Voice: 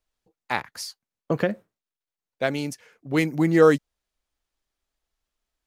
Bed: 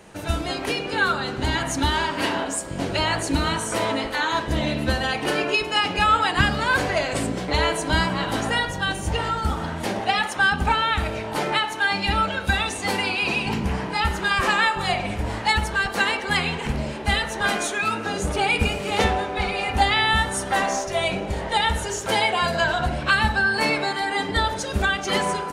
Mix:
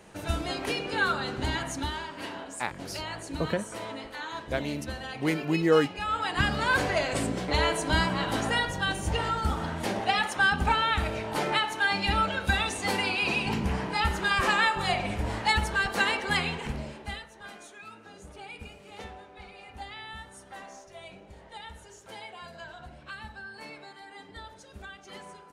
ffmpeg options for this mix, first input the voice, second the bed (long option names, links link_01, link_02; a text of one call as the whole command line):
ffmpeg -i stem1.wav -i stem2.wav -filter_complex "[0:a]adelay=2100,volume=-6dB[link_01];[1:a]volume=5dB,afade=type=out:start_time=1.35:duration=0.69:silence=0.354813,afade=type=in:start_time=6.02:duration=0.63:silence=0.316228,afade=type=out:start_time=16.27:duration=1.01:silence=0.11885[link_02];[link_01][link_02]amix=inputs=2:normalize=0" out.wav